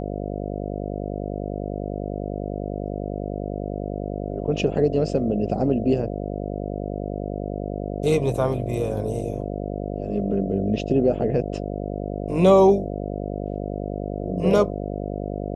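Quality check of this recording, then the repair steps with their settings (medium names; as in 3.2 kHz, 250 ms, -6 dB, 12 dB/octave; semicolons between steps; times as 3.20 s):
buzz 50 Hz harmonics 14 -29 dBFS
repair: de-hum 50 Hz, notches 14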